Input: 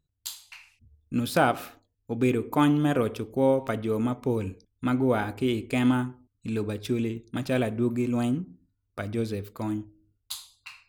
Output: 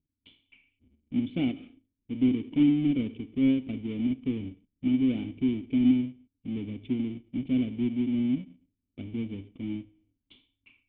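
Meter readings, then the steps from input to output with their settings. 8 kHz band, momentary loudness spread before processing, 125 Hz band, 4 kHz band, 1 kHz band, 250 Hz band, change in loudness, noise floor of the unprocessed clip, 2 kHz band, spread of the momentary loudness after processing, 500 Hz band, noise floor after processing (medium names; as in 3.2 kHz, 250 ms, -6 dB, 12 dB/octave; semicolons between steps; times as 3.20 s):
under -35 dB, 15 LU, -6.0 dB, -7.0 dB, under -20 dB, +1.0 dB, -1.5 dB, -77 dBFS, -12.0 dB, 14 LU, -13.5 dB, -84 dBFS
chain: square wave that keeps the level; cascade formant filter i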